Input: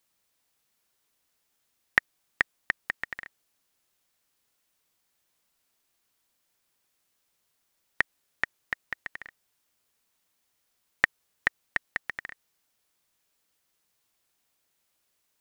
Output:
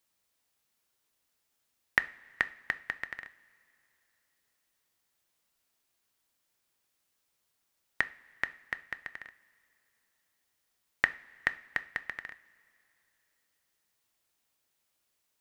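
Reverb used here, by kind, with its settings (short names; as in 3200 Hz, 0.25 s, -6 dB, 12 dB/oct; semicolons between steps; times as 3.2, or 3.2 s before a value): two-slope reverb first 0.41 s, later 3.1 s, from -18 dB, DRR 12 dB; gain -3.5 dB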